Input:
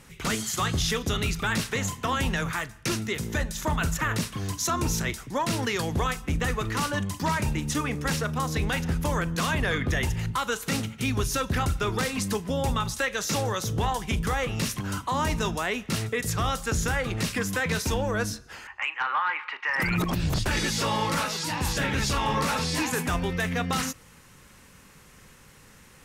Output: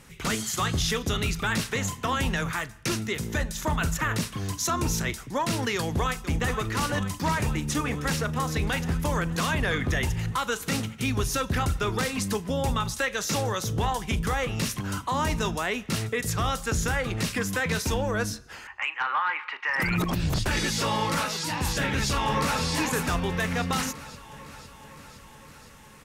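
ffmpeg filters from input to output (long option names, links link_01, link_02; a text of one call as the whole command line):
ffmpeg -i in.wav -filter_complex "[0:a]asplit=2[link_01][link_02];[link_02]afade=type=in:start_time=5.76:duration=0.01,afade=type=out:start_time=6.51:duration=0.01,aecho=0:1:480|960|1440|1920|2400|2880|3360|3840|4320|4800|5280|5760:0.298538|0.238831|0.191064|0.152852|0.122281|0.097825|0.07826|0.062608|0.0500864|0.0400691|0.0320553|0.0256442[link_03];[link_01][link_03]amix=inputs=2:normalize=0,asplit=2[link_04][link_05];[link_05]afade=type=in:start_time=21.76:duration=0.01,afade=type=out:start_time=22.62:duration=0.01,aecho=0:1:510|1020|1530|2040|2550|3060|3570|4080|4590|5100:0.281838|0.197287|0.138101|0.0966705|0.0676694|0.0473686|0.033158|0.0232106|0.0162474|0.0113732[link_06];[link_04][link_06]amix=inputs=2:normalize=0" out.wav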